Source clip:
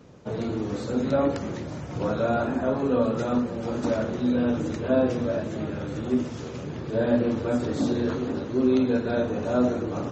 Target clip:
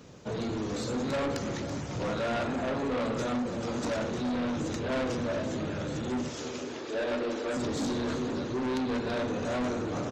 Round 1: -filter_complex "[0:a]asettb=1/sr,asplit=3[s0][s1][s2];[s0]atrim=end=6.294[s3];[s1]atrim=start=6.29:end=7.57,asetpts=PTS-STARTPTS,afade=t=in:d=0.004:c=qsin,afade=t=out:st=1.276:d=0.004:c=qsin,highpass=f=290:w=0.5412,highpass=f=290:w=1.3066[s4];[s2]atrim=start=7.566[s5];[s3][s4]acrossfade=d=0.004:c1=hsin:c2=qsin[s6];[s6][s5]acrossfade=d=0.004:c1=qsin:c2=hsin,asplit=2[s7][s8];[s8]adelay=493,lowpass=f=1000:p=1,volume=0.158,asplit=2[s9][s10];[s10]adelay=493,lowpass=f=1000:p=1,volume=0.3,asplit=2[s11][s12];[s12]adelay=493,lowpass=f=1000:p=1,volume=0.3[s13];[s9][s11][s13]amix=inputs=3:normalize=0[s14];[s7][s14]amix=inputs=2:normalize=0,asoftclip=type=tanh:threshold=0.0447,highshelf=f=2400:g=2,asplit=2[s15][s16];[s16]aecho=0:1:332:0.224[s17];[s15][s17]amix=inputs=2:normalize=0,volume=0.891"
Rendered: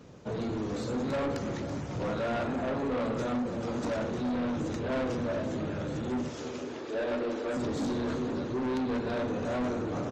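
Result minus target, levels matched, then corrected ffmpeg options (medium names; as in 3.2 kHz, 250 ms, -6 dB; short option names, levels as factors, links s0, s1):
4 kHz band -4.5 dB
-filter_complex "[0:a]asettb=1/sr,asplit=3[s0][s1][s2];[s0]atrim=end=6.294[s3];[s1]atrim=start=6.29:end=7.57,asetpts=PTS-STARTPTS,afade=t=in:d=0.004:c=qsin,afade=t=out:st=1.276:d=0.004:c=qsin,highpass=f=290:w=0.5412,highpass=f=290:w=1.3066[s4];[s2]atrim=start=7.566[s5];[s3][s4]acrossfade=d=0.004:c1=hsin:c2=qsin[s6];[s6][s5]acrossfade=d=0.004:c1=qsin:c2=hsin,asplit=2[s7][s8];[s8]adelay=493,lowpass=f=1000:p=1,volume=0.158,asplit=2[s9][s10];[s10]adelay=493,lowpass=f=1000:p=1,volume=0.3,asplit=2[s11][s12];[s12]adelay=493,lowpass=f=1000:p=1,volume=0.3[s13];[s9][s11][s13]amix=inputs=3:normalize=0[s14];[s7][s14]amix=inputs=2:normalize=0,asoftclip=type=tanh:threshold=0.0447,highshelf=f=2400:g=9,asplit=2[s15][s16];[s16]aecho=0:1:332:0.224[s17];[s15][s17]amix=inputs=2:normalize=0,volume=0.891"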